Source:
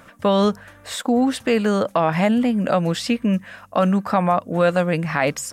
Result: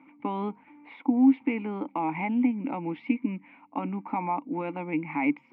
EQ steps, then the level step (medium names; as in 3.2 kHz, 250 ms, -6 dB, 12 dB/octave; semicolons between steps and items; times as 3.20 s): vowel filter u; cabinet simulation 140–3000 Hz, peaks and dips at 150 Hz +6 dB, 270 Hz +8 dB, 560 Hz +10 dB, 920 Hz +4 dB, 1.5 kHz +6 dB, 2.2 kHz +8 dB; 0.0 dB